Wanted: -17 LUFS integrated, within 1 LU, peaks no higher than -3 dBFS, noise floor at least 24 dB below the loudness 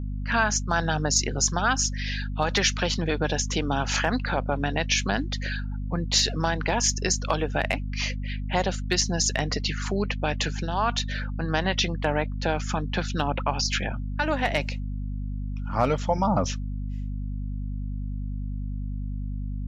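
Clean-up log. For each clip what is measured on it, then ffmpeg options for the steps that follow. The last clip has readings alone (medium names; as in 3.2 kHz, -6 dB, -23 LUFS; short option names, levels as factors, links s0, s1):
hum 50 Hz; highest harmonic 250 Hz; hum level -28 dBFS; loudness -26.5 LUFS; peak level -8.5 dBFS; loudness target -17.0 LUFS
-> -af "bandreject=f=50:t=h:w=6,bandreject=f=100:t=h:w=6,bandreject=f=150:t=h:w=6,bandreject=f=200:t=h:w=6,bandreject=f=250:t=h:w=6"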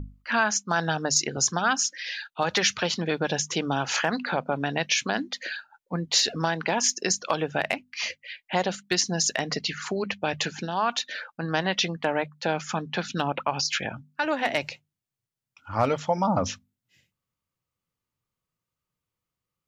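hum not found; loudness -26.5 LUFS; peak level -9.0 dBFS; loudness target -17.0 LUFS
-> -af "volume=2.99,alimiter=limit=0.708:level=0:latency=1"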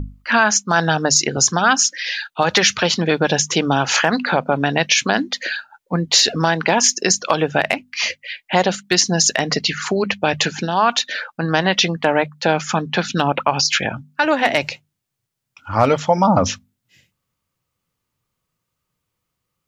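loudness -17.5 LUFS; peak level -3.0 dBFS; noise floor -78 dBFS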